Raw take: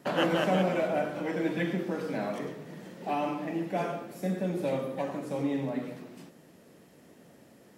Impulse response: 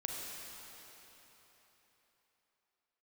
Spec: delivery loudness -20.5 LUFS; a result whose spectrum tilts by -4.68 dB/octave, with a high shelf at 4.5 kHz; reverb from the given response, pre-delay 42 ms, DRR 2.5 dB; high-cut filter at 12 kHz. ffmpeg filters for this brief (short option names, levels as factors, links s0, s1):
-filter_complex "[0:a]lowpass=12000,highshelf=f=4500:g=7.5,asplit=2[s0][s1];[1:a]atrim=start_sample=2205,adelay=42[s2];[s1][s2]afir=irnorm=-1:irlink=0,volume=0.631[s3];[s0][s3]amix=inputs=2:normalize=0,volume=2.66"